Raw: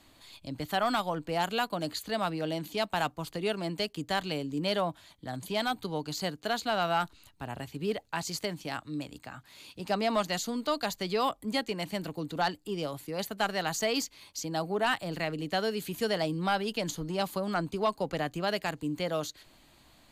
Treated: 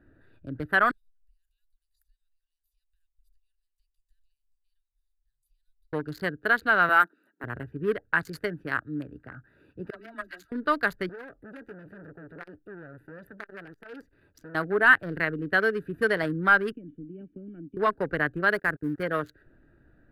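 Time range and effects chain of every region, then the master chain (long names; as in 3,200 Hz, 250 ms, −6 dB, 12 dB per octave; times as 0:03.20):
0:00.91–0:05.93: downward compressor, threshold −35 dBFS + inverse Chebyshev band-stop filter 160–1,100 Hz, stop band 80 dB
0:06.89–0:07.44: Butterworth high-pass 220 Hz + high-shelf EQ 8,200 Hz +11.5 dB
0:09.90–0:10.52: guitar amp tone stack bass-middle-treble 5-5-5 + comb filter 3.1 ms, depth 95% + all-pass dispersion lows, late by 62 ms, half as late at 450 Hz
0:11.09–0:14.55: downward compressor 2 to 1, threshold −36 dBFS + saturating transformer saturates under 2,800 Hz
0:16.72–0:17.77: mu-law and A-law mismatch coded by A + formant resonators in series i + multiband upward and downward compressor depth 100%
0:18.54–0:19.03: variable-slope delta modulation 64 kbit/s + parametric band 2,900 Hz −9.5 dB 0.43 octaves + centre clipping without the shift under −45.5 dBFS
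whole clip: adaptive Wiener filter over 41 samples; drawn EQ curve 120 Hz 0 dB, 210 Hz −4 dB, 410 Hz +3 dB, 790 Hz −7 dB, 1,600 Hz +14 dB, 2,500 Hz −4 dB, 7,100 Hz −17 dB, 10,000 Hz −3 dB; level +4.5 dB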